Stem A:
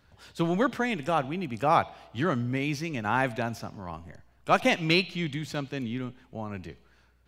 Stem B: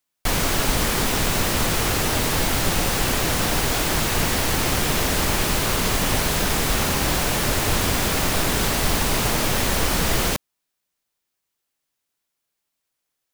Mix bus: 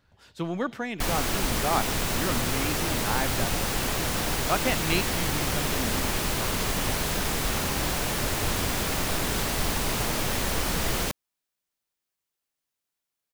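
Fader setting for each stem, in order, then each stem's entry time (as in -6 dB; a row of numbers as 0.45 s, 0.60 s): -4.0 dB, -6.0 dB; 0.00 s, 0.75 s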